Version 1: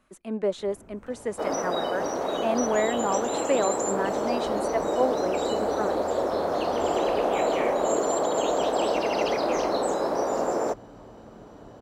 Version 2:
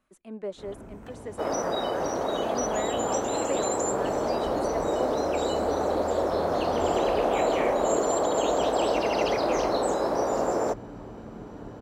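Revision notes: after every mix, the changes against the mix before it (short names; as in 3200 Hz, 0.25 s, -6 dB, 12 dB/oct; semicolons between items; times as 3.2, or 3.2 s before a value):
speech -8.5 dB; first sound +7.0 dB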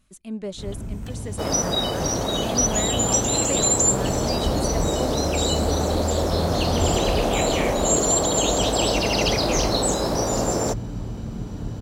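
master: remove three-band isolator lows -17 dB, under 290 Hz, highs -15 dB, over 2000 Hz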